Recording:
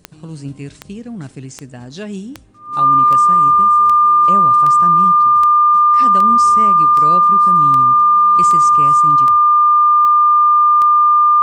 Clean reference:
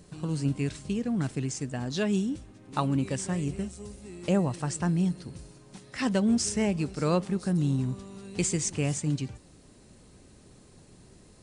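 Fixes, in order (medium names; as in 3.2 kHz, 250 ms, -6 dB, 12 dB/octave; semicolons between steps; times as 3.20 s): de-click; band-stop 1.2 kHz, Q 30; inverse comb 75 ms -23 dB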